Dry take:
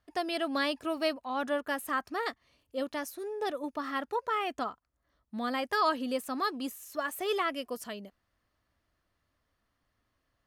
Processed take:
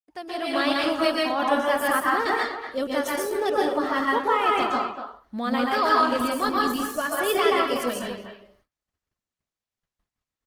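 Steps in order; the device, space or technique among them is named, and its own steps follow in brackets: speakerphone in a meeting room (reverberation RT60 0.45 s, pre-delay 120 ms, DRR -2.5 dB; speakerphone echo 240 ms, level -9 dB; level rider gain up to 12 dB; gate -56 dBFS, range -33 dB; trim -5.5 dB; Opus 16 kbps 48 kHz)

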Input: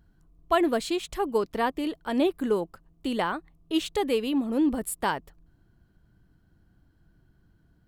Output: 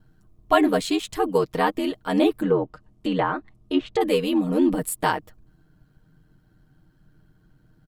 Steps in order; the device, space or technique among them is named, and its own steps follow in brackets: 2.41–4.01 s: low-pass that closes with the level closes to 1.5 kHz, closed at -22 dBFS; ring-modulated robot voice (ring modulator 43 Hz; comb 6.5 ms, depth 65%); trim +6 dB

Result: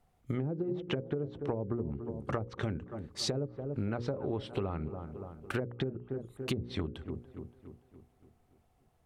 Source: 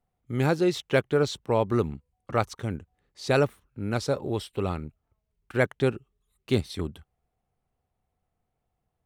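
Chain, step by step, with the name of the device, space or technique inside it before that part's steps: low-pass that closes with the level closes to 390 Hz, closed at -19.5 dBFS; hum notches 60/120/180/240/300/360/420/480/540 Hz; feedback echo behind a low-pass 286 ms, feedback 50%, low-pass 1.4 kHz, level -18.5 dB; serial compression, leveller first (compression 3:1, threshold -27 dBFS, peak gain reduction 6 dB; compression 6:1, threshold -40 dBFS, peak gain reduction 14.5 dB); trim +8.5 dB

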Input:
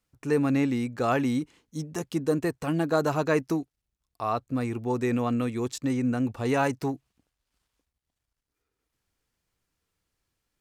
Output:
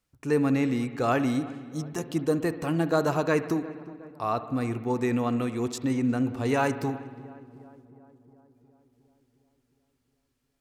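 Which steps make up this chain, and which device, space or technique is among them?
dub delay into a spring reverb (filtered feedback delay 360 ms, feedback 65%, low-pass 1.7 kHz, level -19.5 dB; spring tank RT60 1.6 s, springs 60 ms, chirp 20 ms, DRR 12 dB)

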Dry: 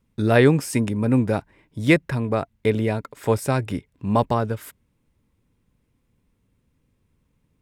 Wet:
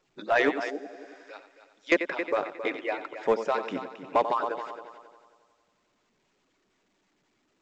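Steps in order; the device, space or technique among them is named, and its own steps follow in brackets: harmonic-percussive separation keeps percussive; 0.72–1.92 s: differentiator; multi-head delay 90 ms, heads first and third, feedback 44%, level -12 dB; 0.73–1.22 s: spectral replace 860–11000 Hz after; telephone (band-pass 350–3400 Hz; saturation -12.5 dBFS, distortion -17 dB; A-law 128 kbps 16 kHz)

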